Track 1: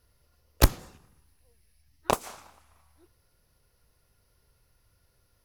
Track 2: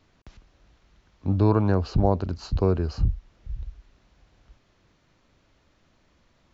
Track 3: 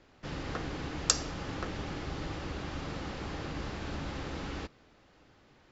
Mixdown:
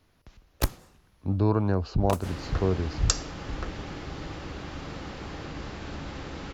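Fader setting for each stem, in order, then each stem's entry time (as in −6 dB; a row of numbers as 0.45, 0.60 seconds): −6.5, −3.5, +0.5 decibels; 0.00, 0.00, 2.00 seconds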